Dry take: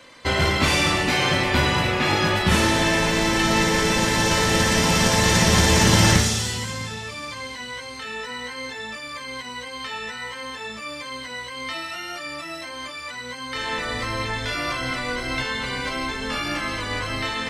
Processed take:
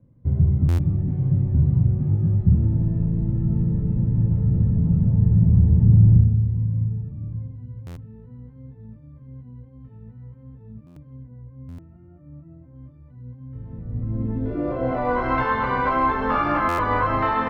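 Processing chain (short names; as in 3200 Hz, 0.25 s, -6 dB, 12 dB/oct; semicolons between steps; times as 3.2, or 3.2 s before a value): 11.23–12.75 LPF 2100 Hz 12 dB/oct; in parallel at -9 dB: sine folder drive 9 dB, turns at -4.5 dBFS; on the sum: low-pass sweep 130 Hz -> 1100 Hz, 13.9–15.26; on a send: echo 1.185 s -19.5 dB; on the sum: stuck buffer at 0.68/7.86/10.86/11.68/16.68, samples 512, times 8; gain -3.5 dB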